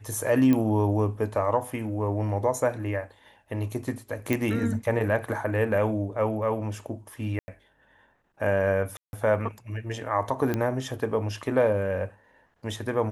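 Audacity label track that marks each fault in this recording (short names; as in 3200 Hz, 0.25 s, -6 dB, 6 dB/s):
0.530000	0.530000	pop -13 dBFS
4.330000	4.330000	pop
7.390000	7.480000	gap 90 ms
8.970000	9.130000	gap 0.161 s
10.540000	10.540000	pop -14 dBFS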